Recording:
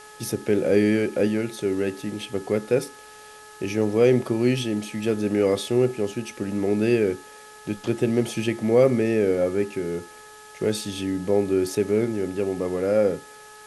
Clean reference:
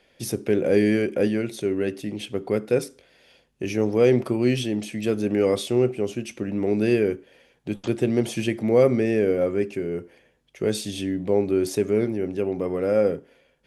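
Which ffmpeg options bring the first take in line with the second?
ffmpeg -i in.wav -af "bandreject=frequency=425.6:width_type=h:width=4,bandreject=frequency=851.2:width_type=h:width=4,bandreject=frequency=1276.8:width_type=h:width=4,bandreject=frequency=1702.4:width_type=h:width=4,afftdn=noise_reduction=13:noise_floor=-45" out.wav

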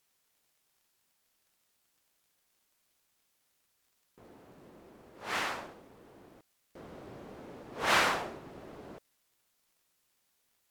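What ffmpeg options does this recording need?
ffmpeg -i in.wav -af "adeclick=threshold=4,agate=range=-21dB:threshold=-68dB" out.wav

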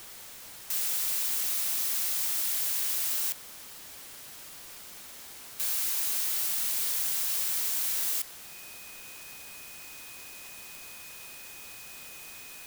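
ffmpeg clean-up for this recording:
ffmpeg -i in.wav -af "adeclick=threshold=4,bandreject=frequency=2500:width=30,afwtdn=0.005" out.wav

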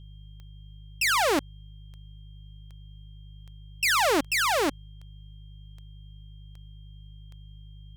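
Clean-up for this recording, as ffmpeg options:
ffmpeg -i in.wav -af "adeclick=threshold=4,bandreject=frequency=51.1:width_type=h:width=4,bandreject=frequency=102.2:width_type=h:width=4,bandreject=frequency=153.3:width_type=h:width=4,bandreject=frequency=3200:width=30" out.wav

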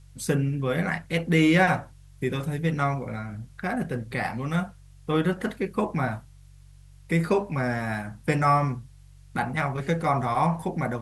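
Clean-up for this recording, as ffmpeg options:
ffmpeg -i in.wav -af "bandreject=frequency=47.1:width_type=h:width=4,bandreject=frequency=94.2:width_type=h:width=4,bandreject=frequency=141.3:width_type=h:width=4,agate=range=-21dB:threshold=-42dB" out.wav

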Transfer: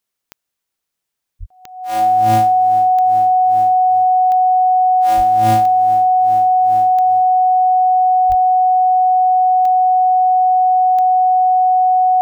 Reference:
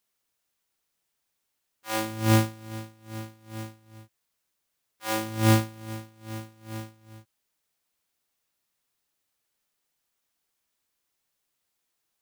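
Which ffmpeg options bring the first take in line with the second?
ffmpeg -i in.wav -filter_complex "[0:a]adeclick=threshold=4,bandreject=frequency=740:width=30,asplit=3[link_01][link_02][link_03];[link_01]afade=type=out:start_time=1.39:duration=0.02[link_04];[link_02]highpass=frequency=140:width=0.5412,highpass=frequency=140:width=1.3066,afade=type=in:start_time=1.39:duration=0.02,afade=type=out:start_time=1.51:duration=0.02[link_05];[link_03]afade=type=in:start_time=1.51:duration=0.02[link_06];[link_04][link_05][link_06]amix=inputs=3:normalize=0,asplit=3[link_07][link_08][link_09];[link_07]afade=type=out:start_time=5.16:duration=0.02[link_10];[link_08]highpass=frequency=140:width=0.5412,highpass=frequency=140:width=1.3066,afade=type=in:start_time=5.16:duration=0.02,afade=type=out:start_time=5.28:duration=0.02[link_11];[link_09]afade=type=in:start_time=5.28:duration=0.02[link_12];[link_10][link_11][link_12]amix=inputs=3:normalize=0,asplit=3[link_13][link_14][link_15];[link_13]afade=type=out:start_time=8.28:duration=0.02[link_16];[link_14]highpass=frequency=140:width=0.5412,highpass=frequency=140:width=1.3066,afade=type=in:start_time=8.28:duration=0.02,afade=type=out:start_time=8.4:duration=0.02[link_17];[link_15]afade=type=in:start_time=8.4:duration=0.02[link_18];[link_16][link_17][link_18]amix=inputs=3:normalize=0" out.wav

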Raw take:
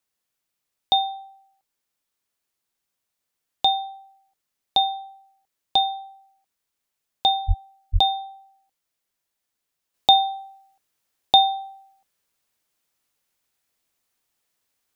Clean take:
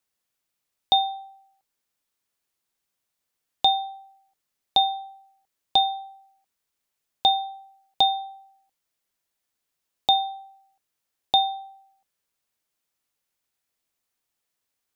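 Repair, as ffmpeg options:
ffmpeg -i in.wav -filter_complex "[0:a]asplit=3[link_01][link_02][link_03];[link_01]afade=type=out:start_time=7.47:duration=0.02[link_04];[link_02]highpass=frequency=140:width=0.5412,highpass=frequency=140:width=1.3066,afade=type=in:start_time=7.47:duration=0.02,afade=type=out:start_time=7.59:duration=0.02[link_05];[link_03]afade=type=in:start_time=7.59:duration=0.02[link_06];[link_04][link_05][link_06]amix=inputs=3:normalize=0,asplit=3[link_07][link_08][link_09];[link_07]afade=type=out:start_time=7.92:duration=0.02[link_10];[link_08]highpass=frequency=140:width=0.5412,highpass=frequency=140:width=1.3066,afade=type=in:start_time=7.92:duration=0.02,afade=type=out:start_time=8.04:duration=0.02[link_11];[link_09]afade=type=in:start_time=8.04:duration=0.02[link_12];[link_10][link_11][link_12]amix=inputs=3:normalize=0,asetnsamples=nb_out_samples=441:pad=0,asendcmd='9.94 volume volume -5dB',volume=0dB" out.wav

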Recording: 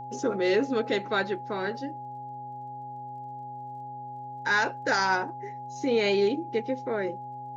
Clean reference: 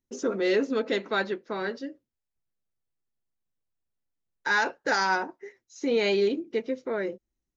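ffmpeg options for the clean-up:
ffmpeg -i in.wav -af "adeclick=threshold=4,bandreject=frequency=128.3:width_type=h:width=4,bandreject=frequency=256.6:width_type=h:width=4,bandreject=frequency=384.9:width_type=h:width=4,bandreject=frequency=513.2:width_type=h:width=4,bandreject=frequency=641.5:width_type=h:width=4,bandreject=frequency=830:width=30" out.wav

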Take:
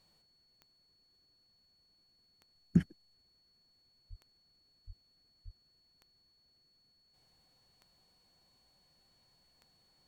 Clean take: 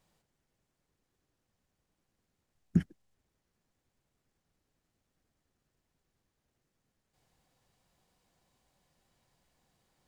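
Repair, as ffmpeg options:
ffmpeg -i in.wav -filter_complex "[0:a]adeclick=threshold=4,bandreject=frequency=4400:width=30,asplit=3[link_01][link_02][link_03];[link_01]afade=type=out:start_time=4.09:duration=0.02[link_04];[link_02]highpass=frequency=140:width=0.5412,highpass=frequency=140:width=1.3066,afade=type=in:start_time=4.09:duration=0.02,afade=type=out:start_time=4.21:duration=0.02[link_05];[link_03]afade=type=in:start_time=4.21:duration=0.02[link_06];[link_04][link_05][link_06]amix=inputs=3:normalize=0,asplit=3[link_07][link_08][link_09];[link_07]afade=type=out:start_time=4.86:duration=0.02[link_10];[link_08]highpass=frequency=140:width=0.5412,highpass=frequency=140:width=1.3066,afade=type=in:start_time=4.86:duration=0.02,afade=type=out:start_time=4.98:duration=0.02[link_11];[link_09]afade=type=in:start_time=4.98:duration=0.02[link_12];[link_10][link_11][link_12]amix=inputs=3:normalize=0,asplit=3[link_13][link_14][link_15];[link_13]afade=type=out:start_time=5.44:duration=0.02[link_16];[link_14]highpass=frequency=140:width=0.5412,highpass=frequency=140:width=1.3066,afade=type=in:start_time=5.44:duration=0.02,afade=type=out:start_time=5.56:duration=0.02[link_17];[link_15]afade=type=in:start_time=5.56:duration=0.02[link_18];[link_16][link_17][link_18]amix=inputs=3:normalize=0" out.wav

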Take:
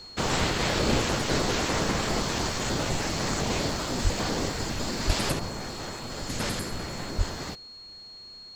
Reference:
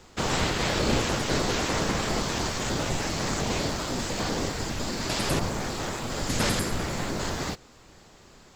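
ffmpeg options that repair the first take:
ffmpeg -i in.wav -filter_complex "[0:a]bandreject=frequency=4300:width=30,asplit=3[link_01][link_02][link_03];[link_01]afade=type=out:start_time=4.03:duration=0.02[link_04];[link_02]highpass=frequency=140:width=0.5412,highpass=frequency=140:width=1.3066,afade=type=in:start_time=4.03:duration=0.02,afade=type=out:start_time=4.15:duration=0.02[link_05];[link_03]afade=type=in:start_time=4.15:duration=0.02[link_06];[link_04][link_05][link_06]amix=inputs=3:normalize=0,asplit=3[link_07][link_08][link_09];[link_07]afade=type=out:start_time=5.06:duration=0.02[link_10];[link_08]highpass=frequency=140:width=0.5412,highpass=frequency=140:width=1.3066,afade=type=in:start_time=5.06:duration=0.02,afade=type=out:start_time=5.18:duration=0.02[link_11];[link_09]afade=type=in:start_time=5.18:duration=0.02[link_12];[link_10][link_11][link_12]amix=inputs=3:normalize=0,asplit=3[link_13][link_14][link_15];[link_13]afade=type=out:start_time=7.17:duration=0.02[link_16];[link_14]highpass=frequency=140:width=0.5412,highpass=frequency=140:width=1.3066,afade=type=in:start_time=7.17:duration=0.02,afade=type=out:start_time=7.29:duration=0.02[link_17];[link_15]afade=type=in:start_time=7.29:duration=0.02[link_18];[link_16][link_17][link_18]amix=inputs=3:normalize=0,asetnsamples=nb_out_samples=441:pad=0,asendcmd='5.32 volume volume 5dB',volume=0dB" out.wav

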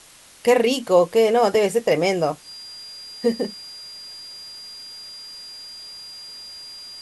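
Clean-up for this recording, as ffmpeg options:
ffmpeg -i in.wav -af "bandreject=frequency=4800:width=30,afftdn=noise_reduction=26:noise_floor=-39" out.wav

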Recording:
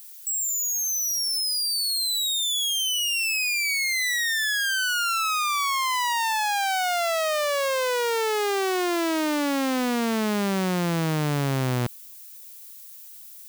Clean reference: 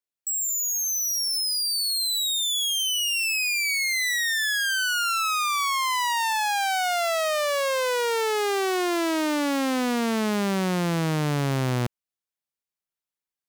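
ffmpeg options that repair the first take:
ffmpeg -i in.wav -af "afftdn=noise_reduction=30:noise_floor=-44" out.wav

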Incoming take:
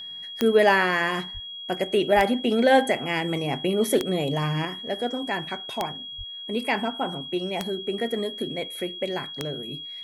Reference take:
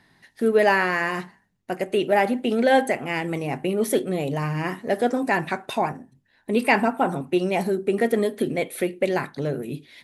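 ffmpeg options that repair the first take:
ffmpeg -i in.wav -filter_complex "[0:a]adeclick=threshold=4,bandreject=frequency=3300:width=30,asplit=3[link_01][link_02][link_03];[link_01]afade=type=out:start_time=1.33:duration=0.02[link_04];[link_02]highpass=frequency=140:width=0.5412,highpass=frequency=140:width=1.3066,afade=type=in:start_time=1.33:duration=0.02,afade=type=out:start_time=1.45:duration=0.02[link_05];[link_03]afade=type=in:start_time=1.45:duration=0.02[link_06];[link_04][link_05][link_06]amix=inputs=3:normalize=0,asplit=3[link_07][link_08][link_09];[link_07]afade=type=out:start_time=2.15:duration=0.02[link_10];[link_08]highpass=frequency=140:width=0.5412,highpass=frequency=140:width=1.3066,afade=type=in:start_time=2.15:duration=0.02,afade=type=out:start_time=2.27:duration=0.02[link_11];[link_09]afade=type=in:start_time=2.27:duration=0.02[link_12];[link_10][link_11][link_12]amix=inputs=3:normalize=0,asplit=3[link_13][link_14][link_15];[link_13]afade=type=out:start_time=6.17:duration=0.02[link_16];[link_14]highpass=frequency=140:width=0.5412,highpass=frequency=140:width=1.3066,afade=type=in:start_time=6.17:duration=0.02,afade=type=out:start_time=6.29:duration=0.02[link_17];[link_15]afade=type=in:start_time=6.29:duration=0.02[link_18];[link_16][link_17][link_18]amix=inputs=3:normalize=0,asetnsamples=nb_out_samples=441:pad=0,asendcmd='4.65 volume volume 6.5dB',volume=0dB" out.wav

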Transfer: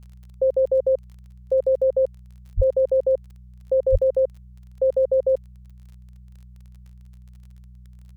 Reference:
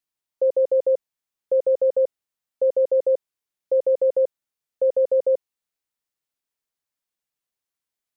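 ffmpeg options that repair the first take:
ffmpeg -i in.wav -filter_complex "[0:a]adeclick=threshold=4,bandreject=frequency=61.6:width_type=h:width=4,bandreject=frequency=123.2:width_type=h:width=4,bandreject=frequency=184.8:width_type=h:width=4,asplit=3[link_01][link_02][link_03];[link_01]afade=type=out:start_time=2.56:duration=0.02[link_04];[link_02]highpass=frequency=140:width=0.5412,highpass=frequency=140:width=1.3066,afade=type=in:start_time=2.56:duration=0.02,afade=type=out:start_time=2.68:duration=0.02[link_05];[link_03]afade=type=in:start_time=2.68:duration=0.02[link_06];[link_04][link_05][link_06]amix=inputs=3:normalize=0,asplit=3[link_07][link_08][link_09];[link_07]afade=type=out:start_time=3.91:duration=0.02[link_10];[link_08]highpass=frequency=140:width=0.5412,highpass=frequency=140:width=1.3066,afade=type=in:start_time=3.91:duration=0.02,afade=type=out:start_time=4.03:duration=0.02[link_11];[link_09]afade=type=in:start_time=4.03:duration=0.02[link_12];[link_10][link_11][link_12]amix=inputs=3:normalize=0" out.wav

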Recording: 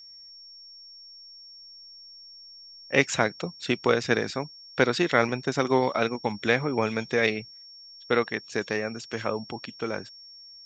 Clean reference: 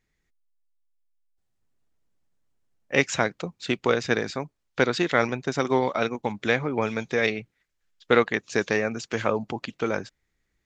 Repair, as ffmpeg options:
ffmpeg -i in.wav -af "bandreject=frequency=5500:width=30,asetnsamples=nb_out_samples=441:pad=0,asendcmd='7.58 volume volume 4.5dB',volume=0dB" out.wav

